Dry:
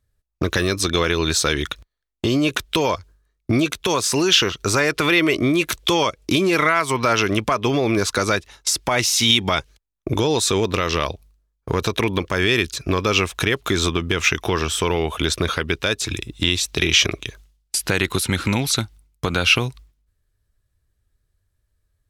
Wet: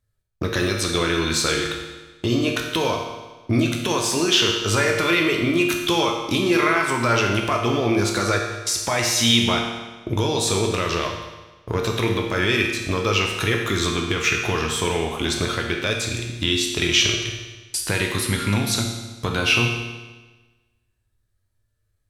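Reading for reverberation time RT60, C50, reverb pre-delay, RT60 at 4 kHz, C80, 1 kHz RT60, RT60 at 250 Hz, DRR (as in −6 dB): 1.2 s, 3.5 dB, 9 ms, 1.2 s, 5.5 dB, 1.2 s, 1.2 s, 0.5 dB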